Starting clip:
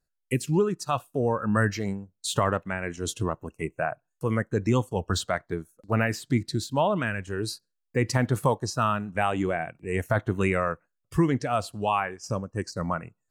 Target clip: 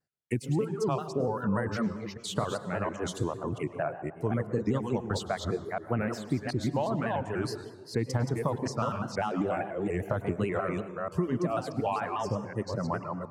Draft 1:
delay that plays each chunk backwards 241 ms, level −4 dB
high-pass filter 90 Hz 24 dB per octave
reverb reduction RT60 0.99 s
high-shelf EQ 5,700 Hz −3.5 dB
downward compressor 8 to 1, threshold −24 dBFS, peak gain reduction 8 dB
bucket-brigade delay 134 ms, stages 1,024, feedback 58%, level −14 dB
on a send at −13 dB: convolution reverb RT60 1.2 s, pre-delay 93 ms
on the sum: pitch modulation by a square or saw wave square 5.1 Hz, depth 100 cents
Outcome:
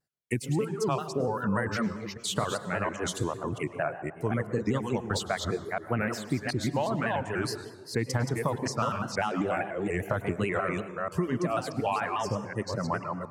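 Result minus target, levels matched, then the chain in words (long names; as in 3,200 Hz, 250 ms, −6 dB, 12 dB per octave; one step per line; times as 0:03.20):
8,000 Hz band +5.0 dB; 2,000 Hz band +4.5 dB
delay that plays each chunk backwards 241 ms, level −4 dB
high-pass filter 90 Hz 24 dB per octave
reverb reduction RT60 0.99 s
high-shelf EQ 5,700 Hz −12.5 dB
downward compressor 8 to 1, threshold −24 dBFS, peak gain reduction 8 dB
dynamic equaliser 2,000 Hz, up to −6 dB, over −47 dBFS, Q 1
bucket-brigade delay 134 ms, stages 1,024, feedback 58%, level −14 dB
on a send at −13 dB: convolution reverb RT60 1.2 s, pre-delay 93 ms
on the sum: pitch modulation by a square or saw wave square 5.1 Hz, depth 100 cents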